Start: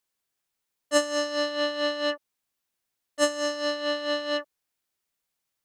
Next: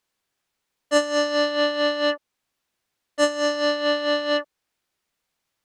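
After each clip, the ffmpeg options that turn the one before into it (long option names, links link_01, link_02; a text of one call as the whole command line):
ffmpeg -i in.wav -filter_complex "[0:a]highshelf=frequency=7600:gain=-11,asplit=2[link_01][link_02];[link_02]alimiter=limit=-21.5dB:level=0:latency=1:release=393,volume=3dB[link_03];[link_01][link_03]amix=inputs=2:normalize=0" out.wav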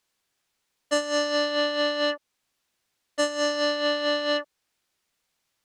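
ffmpeg -i in.wav -af "equalizer=frequency=6200:width=0.39:gain=3.5,acompressor=threshold=-21dB:ratio=6" out.wav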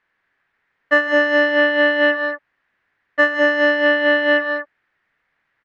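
ffmpeg -i in.wav -filter_complex "[0:a]lowpass=frequency=1800:width_type=q:width=3.9,asplit=2[link_01][link_02];[link_02]aecho=0:1:47|161|204|211:0.119|0.188|0.316|0.266[link_03];[link_01][link_03]amix=inputs=2:normalize=0,volume=5.5dB" out.wav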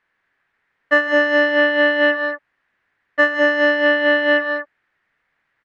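ffmpeg -i in.wav -af "aresample=22050,aresample=44100" out.wav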